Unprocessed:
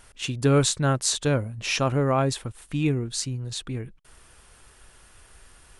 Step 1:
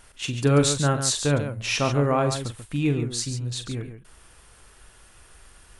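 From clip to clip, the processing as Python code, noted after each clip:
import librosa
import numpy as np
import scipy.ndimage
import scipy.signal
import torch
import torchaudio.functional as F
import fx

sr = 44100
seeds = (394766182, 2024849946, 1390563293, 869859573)

y = fx.echo_multitap(x, sr, ms=(42, 139), db=(-10.0, -9.0))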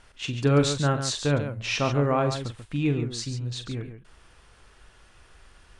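y = scipy.signal.sosfilt(scipy.signal.butter(2, 5500.0, 'lowpass', fs=sr, output='sos'), x)
y = F.gain(torch.from_numpy(y), -1.5).numpy()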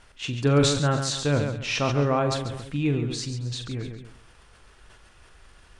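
y = x + 10.0 ** (-18.0 / 20.0) * np.pad(x, (int(271 * sr / 1000.0), 0))[:len(x)]
y = fx.sustainer(y, sr, db_per_s=51.0)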